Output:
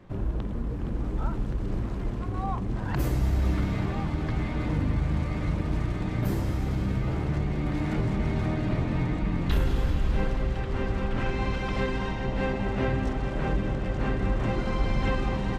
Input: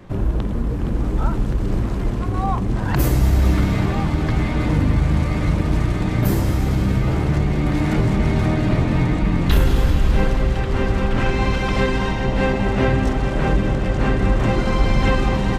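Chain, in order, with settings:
high-shelf EQ 7,100 Hz −7.5 dB
level −9 dB

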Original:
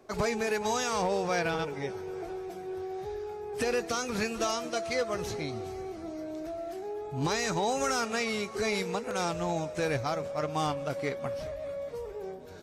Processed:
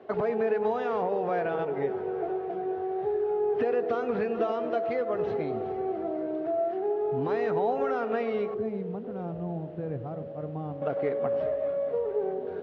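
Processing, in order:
0:08.54–0:10.82: drawn EQ curve 180 Hz 0 dB, 460 Hz −13 dB, 1,700 Hz −22 dB
downward compressor, threshold −33 dBFS, peak gain reduction 8.5 dB
bit-depth reduction 10 bits, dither triangular
loudspeaker in its box 130–2,600 Hz, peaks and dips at 240 Hz +3 dB, 440 Hz +8 dB, 700 Hz +7 dB, 2,300 Hz −7 dB
feedback echo with a band-pass in the loop 100 ms, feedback 75%, band-pass 410 Hz, level −10 dB
level +3.5 dB

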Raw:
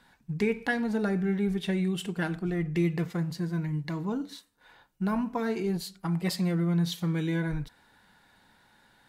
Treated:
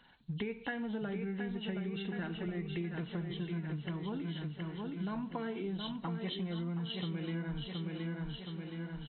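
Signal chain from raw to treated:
hearing-aid frequency compression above 2,700 Hz 4 to 1
repeating echo 720 ms, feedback 52%, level −6.5 dB
downward compressor, threshold −32 dBFS, peak gain reduction 11 dB
level −3 dB

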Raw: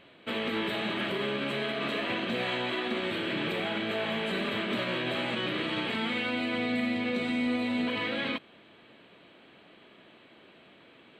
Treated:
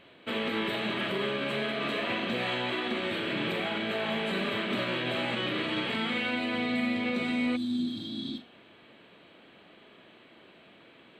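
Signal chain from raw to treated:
flutter between parallel walls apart 7.1 metres, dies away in 0.24 s
healed spectral selection 0:07.59–0:08.47, 420–3,200 Hz after

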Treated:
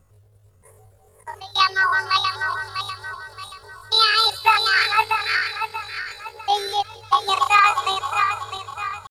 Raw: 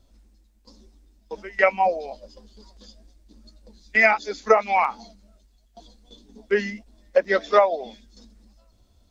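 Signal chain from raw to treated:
feedback delay that plays each chunk backwards 318 ms, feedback 61%, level −2 dB
feedback echo with a band-pass in the loop 177 ms, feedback 83%, band-pass 2,900 Hz, level −18 dB
pitch shifter +12 semitones
level +1 dB

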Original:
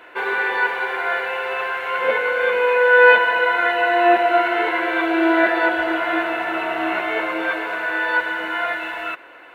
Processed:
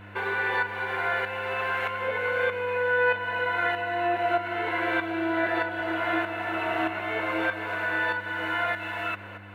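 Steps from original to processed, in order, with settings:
downward compressor 3 to 1, threshold −26 dBFS, peak gain reduction 14 dB
shaped tremolo saw up 1.6 Hz, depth 60%
hum with harmonics 100 Hz, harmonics 3, −49 dBFS −6 dB per octave
level +2 dB

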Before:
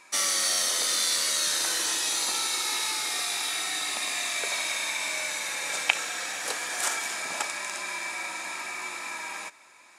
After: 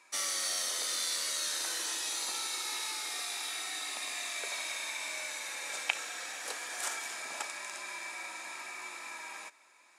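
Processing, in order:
high-pass filter 240 Hz 12 dB per octave
level −8 dB

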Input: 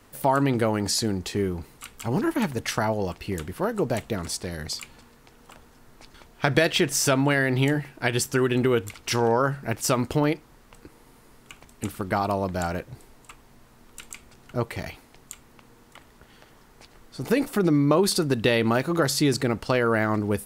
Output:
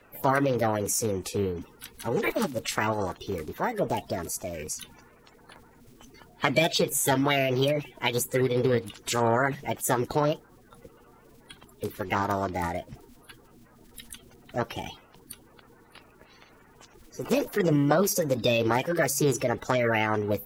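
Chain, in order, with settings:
spectral magnitudes quantised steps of 30 dB
formants moved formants +5 semitones
level −1.5 dB

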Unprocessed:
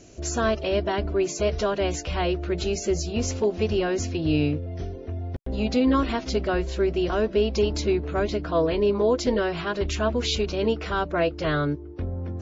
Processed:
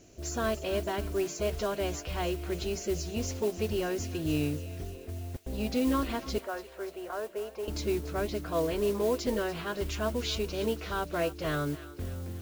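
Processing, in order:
0:06.38–0:07.68: three-way crossover with the lows and the highs turned down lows −22 dB, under 460 Hz, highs −22 dB, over 2,000 Hz
noise that follows the level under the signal 19 dB
feedback echo with a high-pass in the loop 289 ms, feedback 64%, high-pass 890 Hz, level −14.5 dB
level −7 dB

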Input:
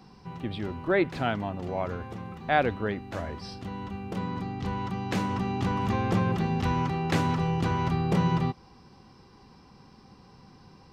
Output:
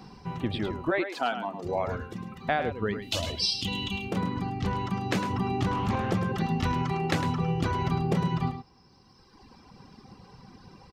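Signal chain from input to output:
reverb reduction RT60 1.9 s
0:00.90–0:01.64: high-pass filter 490 Hz → 170 Hz 24 dB per octave
0:03.02–0:04.05: high shelf with overshoot 2,200 Hz +13 dB, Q 3
downward compressor 6 to 1, threshold −29 dBFS, peak gain reduction 11.5 dB
single-tap delay 105 ms −9 dB
0:05.71–0:06.12: highs frequency-modulated by the lows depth 0.24 ms
level +5.5 dB

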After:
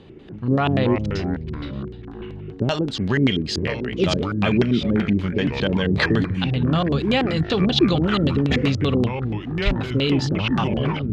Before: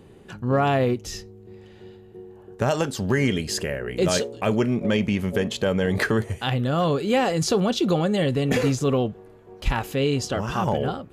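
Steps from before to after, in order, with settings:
dynamic equaliser 470 Hz, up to −4 dB, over −36 dBFS, Q 0.81
auto-filter low-pass square 5.2 Hz 330–3,800 Hz
delay with pitch and tempo change per echo 82 ms, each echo −5 semitones, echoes 3, each echo −6 dB
level +2 dB

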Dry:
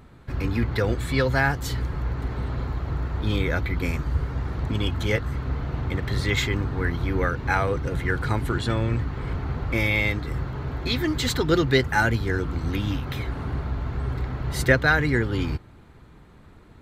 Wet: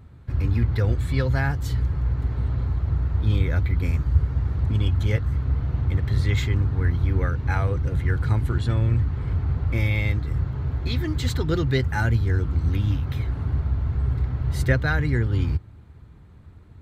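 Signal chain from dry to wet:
parametric band 85 Hz +14.5 dB 1.7 octaves
level −6.5 dB

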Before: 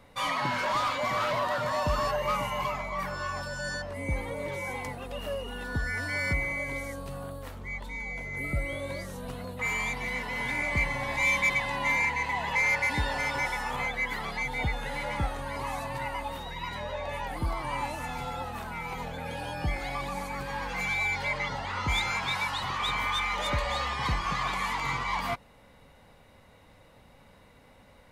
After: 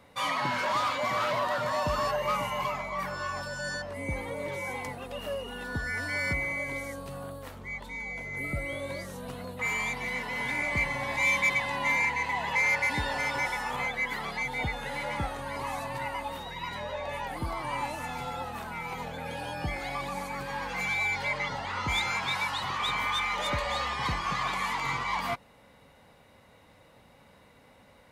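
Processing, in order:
high-pass filter 100 Hz 6 dB per octave

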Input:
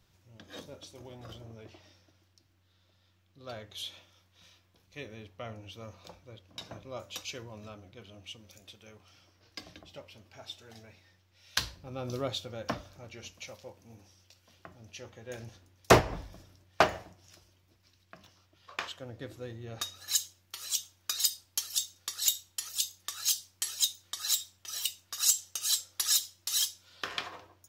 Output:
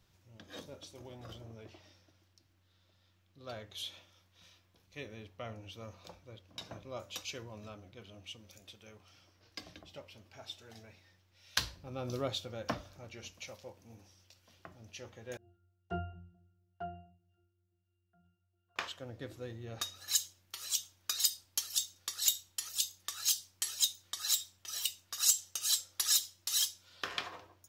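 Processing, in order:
0:15.37–0:18.76: resonances in every octave F, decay 0.49 s
level −2 dB

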